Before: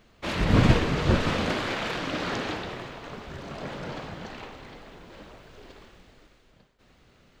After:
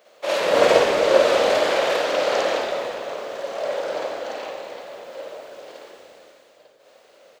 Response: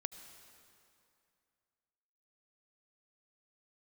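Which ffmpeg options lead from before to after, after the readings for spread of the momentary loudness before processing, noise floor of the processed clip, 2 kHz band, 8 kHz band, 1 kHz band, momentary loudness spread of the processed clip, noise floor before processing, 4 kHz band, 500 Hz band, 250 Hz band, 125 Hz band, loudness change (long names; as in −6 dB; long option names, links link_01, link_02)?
21 LU, −54 dBFS, +5.5 dB, +9.5 dB, +8.5 dB, 20 LU, −60 dBFS, +6.5 dB, +14.0 dB, −5.0 dB, below −15 dB, +6.5 dB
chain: -filter_complex "[0:a]highpass=frequency=560:width_type=q:width=5.3,highshelf=frequency=5700:gain=9.5,asplit=6[link_01][link_02][link_03][link_04][link_05][link_06];[link_02]adelay=90,afreqshift=-80,volume=-11.5dB[link_07];[link_03]adelay=180,afreqshift=-160,volume=-18.1dB[link_08];[link_04]adelay=270,afreqshift=-240,volume=-24.6dB[link_09];[link_05]adelay=360,afreqshift=-320,volume=-31.2dB[link_10];[link_06]adelay=450,afreqshift=-400,volume=-37.7dB[link_11];[link_01][link_07][link_08][link_09][link_10][link_11]amix=inputs=6:normalize=0,asplit=2[link_12][link_13];[1:a]atrim=start_sample=2205,asetrate=52920,aresample=44100,adelay=52[link_14];[link_13][link_14]afir=irnorm=-1:irlink=0,volume=6dB[link_15];[link_12][link_15]amix=inputs=2:normalize=0,volume=-1dB"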